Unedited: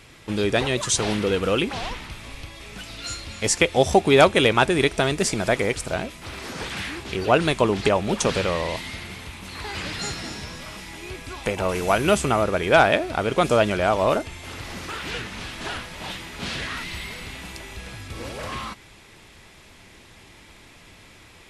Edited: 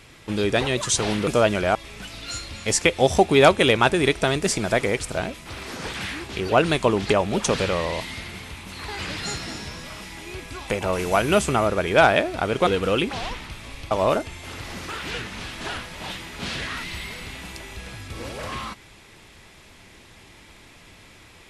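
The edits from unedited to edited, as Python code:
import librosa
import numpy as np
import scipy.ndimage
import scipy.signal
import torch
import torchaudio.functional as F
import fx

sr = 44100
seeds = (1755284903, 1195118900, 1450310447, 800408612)

y = fx.edit(x, sr, fx.swap(start_s=1.27, length_s=1.24, other_s=13.43, other_length_s=0.48), tone=tone)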